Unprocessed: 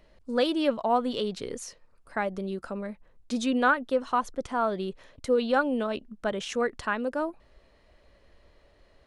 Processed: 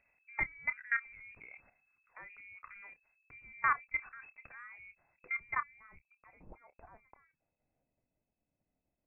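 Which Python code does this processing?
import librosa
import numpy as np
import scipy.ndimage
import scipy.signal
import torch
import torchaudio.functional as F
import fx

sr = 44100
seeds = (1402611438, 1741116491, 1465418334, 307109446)

y = fx.level_steps(x, sr, step_db=22)
y = fx.freq_invert(y, sr, carrier_hz=2600)
y = fx.low_shelf(y, sr, hz=140.0, db=9.0)
y = fx.doubler(y, sr, ms=28.0, db=-13.0)
y = fx.filter_sweep_lowpass(y, sr, from_hz=1700.0, to_hz=370.0, start_s=4.8, end_s=8.2, q=0.99)
y = y * 10.0 ** (-5.5 / 20.0)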